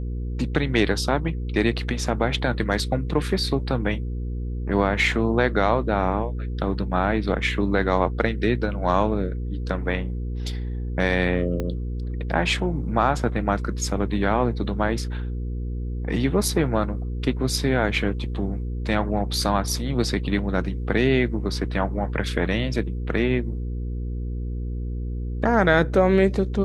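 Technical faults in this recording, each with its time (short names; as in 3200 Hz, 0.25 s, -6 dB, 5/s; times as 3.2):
hum 60 Hz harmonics 8 -28 dBFS
11.6 pop -15 dBFS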